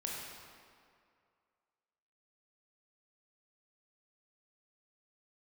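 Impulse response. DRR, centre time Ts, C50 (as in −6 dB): −3.5 dB, 113 ms, −1.0 dB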